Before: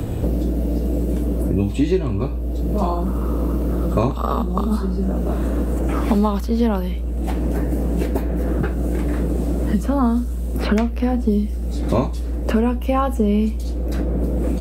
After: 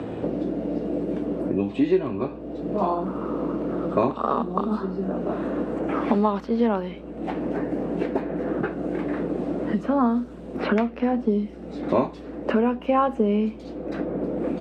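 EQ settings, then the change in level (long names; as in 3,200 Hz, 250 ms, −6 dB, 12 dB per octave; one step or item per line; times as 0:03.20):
band-pass filter 250–2,600 Hz
0.0 dB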